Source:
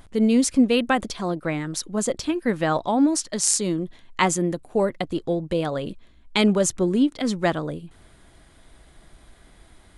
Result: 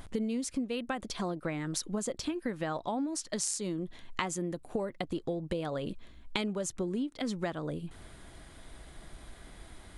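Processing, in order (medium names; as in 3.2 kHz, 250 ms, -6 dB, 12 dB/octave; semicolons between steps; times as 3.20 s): compression 12:1, threshold -32 dBFS, peak gain reduction 19.5 dB; trim +1.5 dB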